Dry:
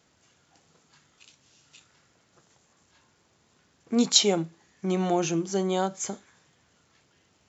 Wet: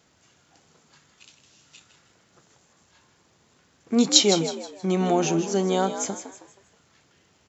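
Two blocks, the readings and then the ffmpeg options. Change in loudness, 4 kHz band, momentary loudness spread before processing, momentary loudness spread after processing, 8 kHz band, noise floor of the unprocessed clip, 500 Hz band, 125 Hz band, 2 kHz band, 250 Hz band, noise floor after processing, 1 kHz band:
+3.5 dB, +3.5 dB, 15 LU, 14 LU, no reading, -67 dBFS, +3.5 dB, +3.0 dB, +3.5 dB, +3.5 dB, -63 dBFS, +3.5 dB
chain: -filter_complex "[0:a]asplit=5[s0][s1][s2][s3][s4];[s1]adelay=159,afreqshift=63,volume=0.316[s5];[s2]adelay=318,afreqshift=126,volume=0.114[s6];[s3]adelay=477,afreqshift=189,volume=0.0412[s7];[s4]adelay=636,afreqshift=252,volume=0.0148[s8];[s0][s5][s6][s7][s8]amix=inputs=5:normalize=0,volume=1.41"

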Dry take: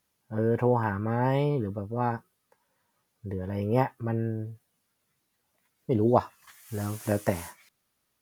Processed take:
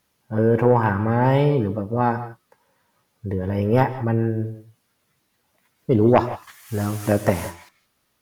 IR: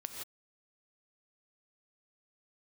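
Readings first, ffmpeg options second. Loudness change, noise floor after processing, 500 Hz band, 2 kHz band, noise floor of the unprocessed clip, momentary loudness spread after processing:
+7.5 dB, -70 dBFS, +7.5 dB, +8.5 dB, -77 dBFS, 14 LU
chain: -filter_complex "[0:a]aeval=exprs='0.447*sin(PI/2*1.58*val(0)/0.447)':c=same,asplit=2[s0][s1];[1:a]atrim=start_sample=2205,lowpass=6500[s2];[s1][s2]afir=irnorm=-1:irlink=0,volume=0.596[s3];[s0][s3]amix=inputs=2:normalize=0,volume=0.75"

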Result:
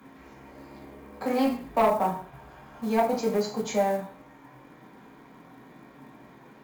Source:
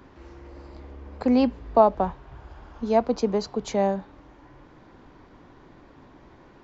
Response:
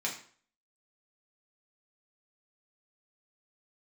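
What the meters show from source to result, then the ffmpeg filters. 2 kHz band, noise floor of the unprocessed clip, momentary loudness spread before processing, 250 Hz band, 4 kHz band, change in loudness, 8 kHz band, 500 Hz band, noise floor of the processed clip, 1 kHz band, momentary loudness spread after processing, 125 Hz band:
+4.0 dB, -52 dBFS, 14 LU, -4.5 dB, -0.5 dB, -3.0 dB, no reading, -3.0 dB, -52 dBFS, -1.5 dB, 22 LU, -3.5 dB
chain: -filter_complex "[0:a]acrossover=split=350|1500[s0][s1][s2];[s0]volume=39.8,asoftclip=hard,volume=0.0251[s3];[s2]equalizer=f=5300:w=1:g=-8[s4];[s3][s1][s4]amix=inputs=3:normalize=0[s5];[1:a]atrim=start_sample=2205,afade=t=out:st=0.3:d=0.01,atrim=end_sample=13671[s6];[s5][s6]afir=irnorm=-1:irlink=0,acrusher=bits=8:mode=log:mix=0:aa=0.000001,aemphasis=mode=production:type=cd,asoftclip=type=tanh:threshold=0.251,volume=0.75"

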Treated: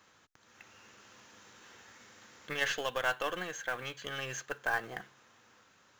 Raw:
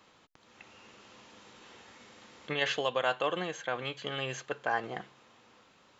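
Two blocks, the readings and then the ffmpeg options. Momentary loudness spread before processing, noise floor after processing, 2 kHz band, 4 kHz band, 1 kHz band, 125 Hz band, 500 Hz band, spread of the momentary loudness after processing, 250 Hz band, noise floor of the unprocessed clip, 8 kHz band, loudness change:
23 LU, -65 dBFS, +1.0 dB, -3.5 dB, -3.5 dB, -5.0 dB, -5.5 dB, 22 LU, -6.0 dB, -63 dBFS, no reading, -2.0 dB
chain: -af "aeval=exprs='0.158*(cos(1*acos(clip(val(0)/0.158,-1,1)))-cos(1*PI/2))+0.01*(cos(6*acos(clip(val(0)/0.158,-1,1)))-cos(6*PI/2))':c=same,equalizer=f=100:t=o:w=0.67:g=5,equalizer=f=1600:t=o:w=0.67:g=8,equalizer=f=6300:t=o:w=0.67:g=9,acrusher=bits=5:mode=log:mix=0:aa=0.000001,volume=0.531"

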